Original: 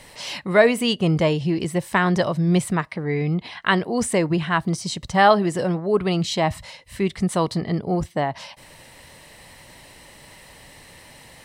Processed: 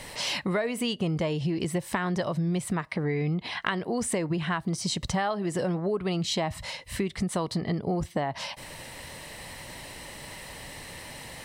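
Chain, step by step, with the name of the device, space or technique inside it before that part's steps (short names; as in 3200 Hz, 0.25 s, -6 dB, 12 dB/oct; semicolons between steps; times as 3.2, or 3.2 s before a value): serial compression, peaks first (compressor 6:1, threshold -26 dBFS, peak gain reduction 16 dB; compressor 1.5:1, threshold -34 dBFS, peak gain reduction 4.5 dB); gain +4 dB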